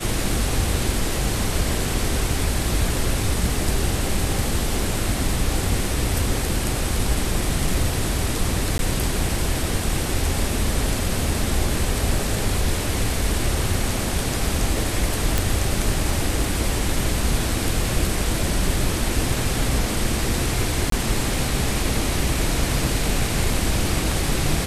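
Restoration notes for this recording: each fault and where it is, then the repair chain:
0:08.78–0:08.79: drop-out 12 ms
0:15.38: click
0:20.90–0:20.92: drop-out 23 ms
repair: click removal
repair the gap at 0:08.78, 12 ms
repair the gap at 0:20.90, 23 ms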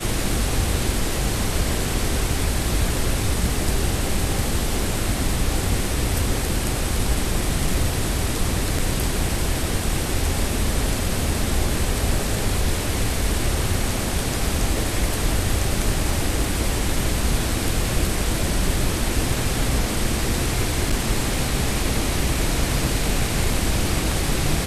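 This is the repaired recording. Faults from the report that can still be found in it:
none of them is left

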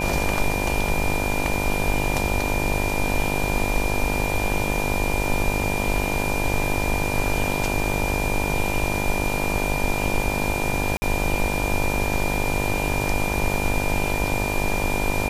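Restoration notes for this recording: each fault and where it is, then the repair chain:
mains buzz 50 Hz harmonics 20 −27 dBFS
whistle 2,400 Hz −28 dBFS
0:10.97–0:11.02: drop-out 50 ms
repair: notch filter 2,400 Hz, Q 30
hum removal 50 Hz, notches 20
repair the gap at 0:10.97, 50 ms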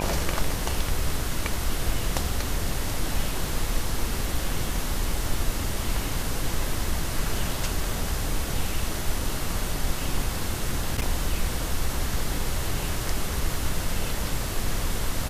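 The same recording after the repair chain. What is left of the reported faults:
none of them is left

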